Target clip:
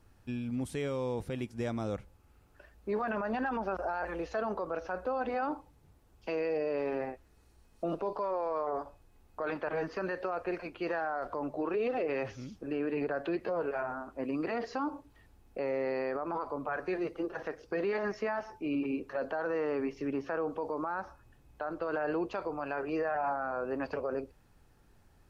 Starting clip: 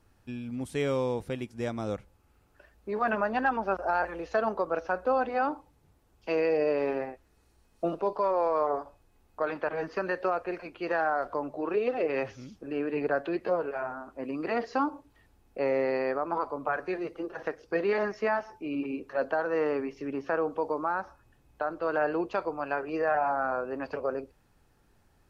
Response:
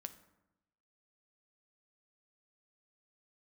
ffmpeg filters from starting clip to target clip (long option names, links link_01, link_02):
-af "lowshelf=frequency=160:gain=3.5,alimiter=level_in=1dB:limit=-24dB:level=0:latency=1:release=36,volume=-1dB"